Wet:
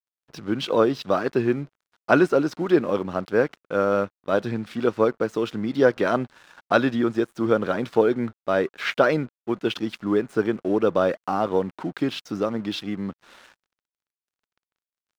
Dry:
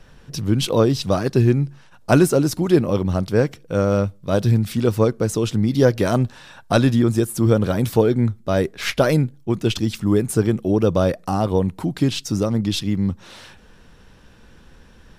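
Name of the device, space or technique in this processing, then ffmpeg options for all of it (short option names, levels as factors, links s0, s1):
pocket radio on a weak battery: -af "highpass=280,lowpass=3300,aeval=exprs='sgn(val(0))*max(abs(val(0))-0.00501,0)':c=same,equalizer=f=1400:t=o:w=0.6:g=5,volume=0.891"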